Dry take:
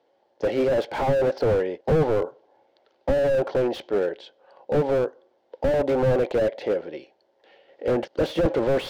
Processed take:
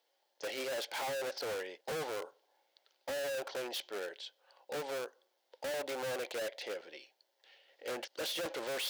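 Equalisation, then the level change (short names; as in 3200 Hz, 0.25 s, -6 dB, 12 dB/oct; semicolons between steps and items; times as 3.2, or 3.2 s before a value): differentiator; +5.5 dB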